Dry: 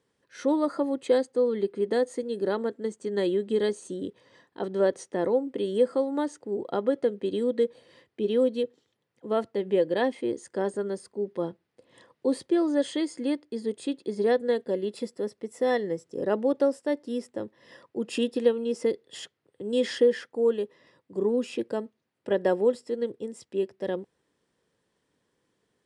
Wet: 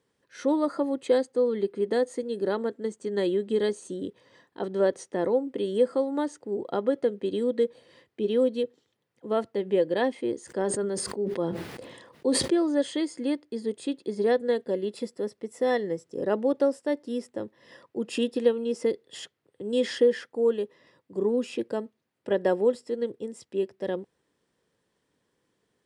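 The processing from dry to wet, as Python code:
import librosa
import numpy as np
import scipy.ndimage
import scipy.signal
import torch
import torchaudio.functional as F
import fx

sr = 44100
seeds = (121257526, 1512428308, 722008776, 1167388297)

y = fx.sustainer(x, sr, db_per_s=40.0, at=(10.42, 12.52))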